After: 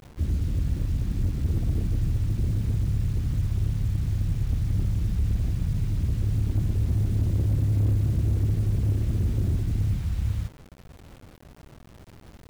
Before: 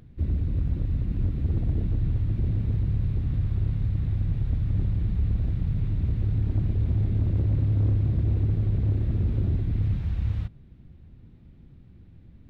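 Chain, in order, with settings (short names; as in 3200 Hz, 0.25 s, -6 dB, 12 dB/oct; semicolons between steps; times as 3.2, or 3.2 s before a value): bit-crush 8-bit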